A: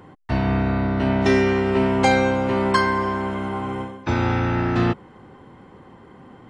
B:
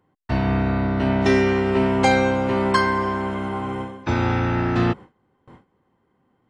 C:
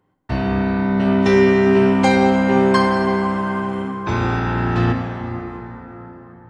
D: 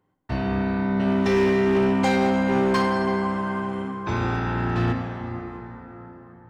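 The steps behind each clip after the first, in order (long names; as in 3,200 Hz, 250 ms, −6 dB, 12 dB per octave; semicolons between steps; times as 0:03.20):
noise gate with hold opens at −34 dBFS
dense smooth reverb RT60 4.7 s, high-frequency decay 0.45×, DRR 2 dB
gain into a clipping stage and back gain 10.5 dB; level −5 dB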